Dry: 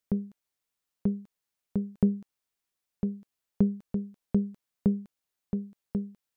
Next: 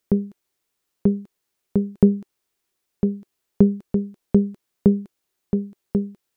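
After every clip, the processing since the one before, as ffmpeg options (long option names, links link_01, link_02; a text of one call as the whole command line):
ffmpeg -i in.wav -af "equalizer=frequency=370:width=2.9:gain=8,volume=8dB" out.wav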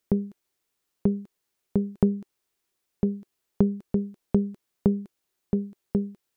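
ffmpeg -i in.wav -af "acompressor=threshold=-18dB:ratio=2,volume=-2dB" out.wav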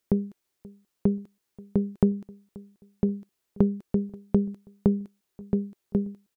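ffmpeg -i in.wav -filter_complex "[0:a]asplit=2[link_01][link_02];[link_02]adelay=532,lowpass=frequency=2000:poles=1,volume=-22.5dB,asplit=2[link_03][link_04];[link_04]adelay=532,lowpass=frequency=2000:poles=1,volume=0.35[link_05];[link_01][link_03][link_05]amix=inputs=3:normalize=0" out.wav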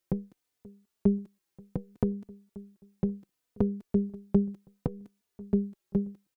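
ffmpeg -i in.wav -filter_complex "[0:a]asplit=2[link_01][link_02];[link_02]adelay=3.3,afreqshift=-0.66[link_03];[link_01][link_03]amix=inputs=2:normalize=1" out.wav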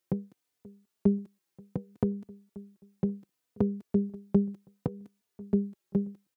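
ffmpeg -i in.wav -af "highpass=84" out.wav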